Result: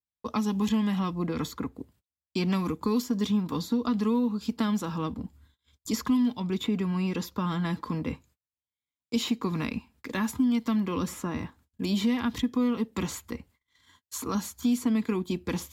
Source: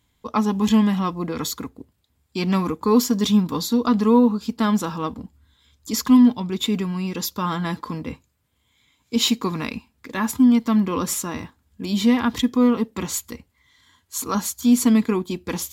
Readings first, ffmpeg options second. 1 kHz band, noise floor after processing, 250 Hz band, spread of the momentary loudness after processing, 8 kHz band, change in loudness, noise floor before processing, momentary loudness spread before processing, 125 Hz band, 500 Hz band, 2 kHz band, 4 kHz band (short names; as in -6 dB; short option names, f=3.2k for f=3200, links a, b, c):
-9.0 dB, under -85 dBFS, -8.0 dB, 11 LU, -12.0 dB, -8.0 dB, -68 dBFS, 15 LU, -4.0 dB, -8.5 dB, -6.0 dB, -9.5 dB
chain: -filter_complex "[0:a]acrossover=split=300|2400[a][b][c];[a]acompressor=threshold=-27dB:ratio=4[d];[b]acompressor=threshold=-34dB:ratio=4[e];[c]acompressor=threshold=-36dB:ratio=4[f];[d][e][f]amix=inputs=3:normalize=0,agate=range=-36dB:threshold=-56dB:ratio=16:detection=peak,adynamicequalizer=threshold=0.00316:dfrequency=3200:dqfactor=0.7:tfrequency=3200:tqfactor=0.7:attack=5:release=100:ratio=0.375:range=3.5:mode=cutabove:tftype=highshelf"